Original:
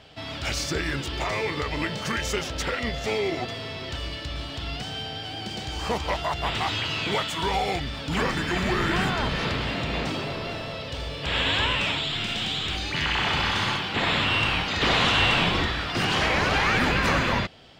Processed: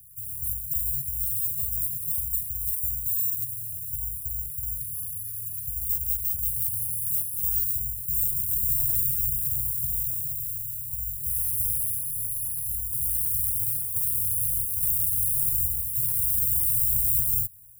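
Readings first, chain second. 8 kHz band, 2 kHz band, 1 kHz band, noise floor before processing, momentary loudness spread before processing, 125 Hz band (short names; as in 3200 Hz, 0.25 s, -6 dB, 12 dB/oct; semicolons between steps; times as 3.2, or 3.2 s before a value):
+9.5 dB, under -40 dB, under -40 dB, -35 dBFS, 11 LU, -7.0 dB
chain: self-modulated delay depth 0.21 ms; careless resampling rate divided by 6×, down filtered, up zero stuff; Chebyshev band-stop 130–9600 Hz, order 4; gain -4 dB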